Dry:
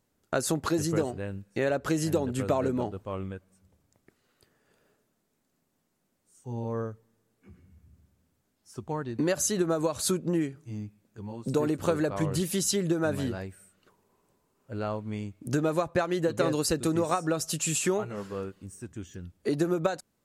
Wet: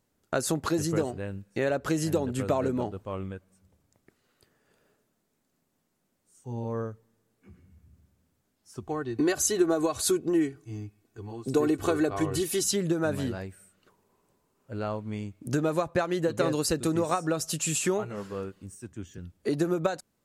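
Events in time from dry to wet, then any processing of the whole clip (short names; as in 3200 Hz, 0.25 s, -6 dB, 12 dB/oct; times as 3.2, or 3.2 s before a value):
8.82–12.64 comb 2.7 ms, depth 69%
18.75–19.18 three-band expander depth 70%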